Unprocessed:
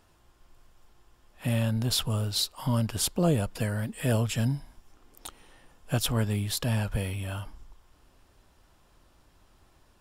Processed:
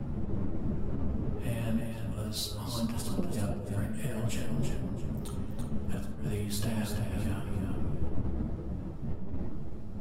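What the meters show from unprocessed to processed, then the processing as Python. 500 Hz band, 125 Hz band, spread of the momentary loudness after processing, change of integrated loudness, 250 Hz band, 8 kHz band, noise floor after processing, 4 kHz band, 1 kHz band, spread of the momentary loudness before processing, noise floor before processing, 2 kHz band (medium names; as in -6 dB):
-5.0 dB, -4.0 dB, 6 LU, -6.5 dB, -1.0 dB, -8.5 dB, -38 dBFS, -9.5 dB, -5.5 dB, 12 LU, -63 dBFS, -7.0 dB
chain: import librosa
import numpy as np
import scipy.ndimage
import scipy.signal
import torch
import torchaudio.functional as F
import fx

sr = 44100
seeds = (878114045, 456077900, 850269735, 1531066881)

y = fx.dmg_wind(x, sr, seeds[0], corner_hz=170.0, level_db=-25.0)
y = fx.over_compress(y, sr, threshold_db=-26.0, ratio=-0.5)
y = fx.dynamic_eq(y, sr, hz=3700.0, q=0.71, threshold_db=-46.0, ratio=4.0, max_db=-4)
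y = fx.echo_feedback(y, sr, ms=336, feedback_pct=27, wet_db=-6.0)
y = fx.rev_freeverb(y, sr, rt60_s=1.2, hf_ratio=0.35, predelay_ms=5, drr_db=4.0)
y = fx.ensemble(y, sr)
y = F.gain(torch.from_numpy(y), -5.0).numpy()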